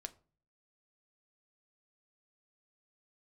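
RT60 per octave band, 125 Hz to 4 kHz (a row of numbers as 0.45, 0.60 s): 0.70, 0.55, 0.45, 0.35, 0.30, 0.25 s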